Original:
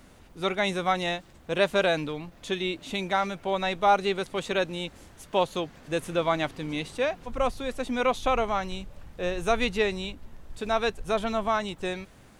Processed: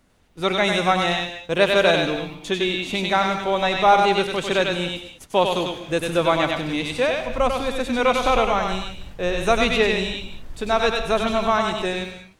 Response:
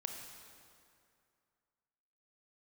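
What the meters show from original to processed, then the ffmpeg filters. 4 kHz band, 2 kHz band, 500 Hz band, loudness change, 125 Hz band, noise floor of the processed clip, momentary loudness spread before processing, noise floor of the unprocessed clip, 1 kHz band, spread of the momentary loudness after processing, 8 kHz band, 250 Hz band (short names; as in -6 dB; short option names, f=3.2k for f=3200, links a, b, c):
+9.0 dB, +8.0 dB, +6.5 dB, +7.0 dB, +6.5 dB, -46 dBFS, 11 LU, -53 dBFS, +7.0 dB, 10 LU, +7.5 dB, +6.5 dB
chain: -filter_complex "[0:a]agate=range=-14dB:threshold=-45dB:ratio=16:detection=peak,asplit=2[a][b];[b]equalizer=f=3.4k:t=o:w=1.8:g=6.5[c];[1:a]atrim=start_sample=2205,afade=t=out:st=0.27:d=0.01,atrim=end_sample=12348,adelay=97[d];[c][d]afir=irnorm=-1:irlink=0,volume=-4dB[e];[a][e]amix=inputs=2:normalize=0,volume=5.5dB"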